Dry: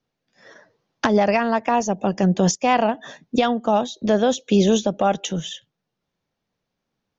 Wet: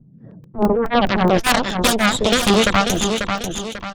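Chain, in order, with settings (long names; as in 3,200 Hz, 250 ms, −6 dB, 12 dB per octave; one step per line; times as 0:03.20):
low-pass filter sweep 170 Hz → 3,400 Hz, 0:01.14–0:02.64
harmonic generator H 5 −21 dB, 7 −10 dB, 8 −10 dB, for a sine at −4.5 dBFS
time stretch by overlap-add 0.55×, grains 179 ms
auto-filter notch saw down 3.2 Hz 320–2,700 Hz
on a send: repeating echo 542 ms, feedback 17%, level −12 dB
on the sum: regular buffer underruns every 0.21 s, samples 64, zero, from 0:00.44
envelope flattener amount 50%
level −1 dB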